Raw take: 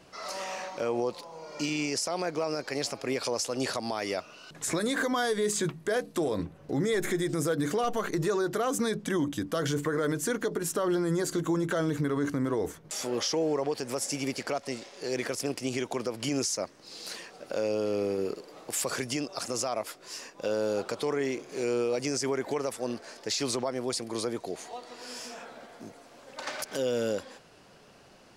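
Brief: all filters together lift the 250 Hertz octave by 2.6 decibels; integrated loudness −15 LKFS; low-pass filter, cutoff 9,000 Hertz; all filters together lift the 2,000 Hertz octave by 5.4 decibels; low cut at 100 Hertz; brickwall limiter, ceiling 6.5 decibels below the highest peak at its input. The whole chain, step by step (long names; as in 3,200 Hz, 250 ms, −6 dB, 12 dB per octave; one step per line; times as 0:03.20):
high-pass filter 100 Hz
low-pass filter 9,000 Hz
parametric band 250 Hz +3.5 dB
parametric band 2,000 Hz +7 dB
level +16.5 dB
brickwall limiter −4.5 dBFS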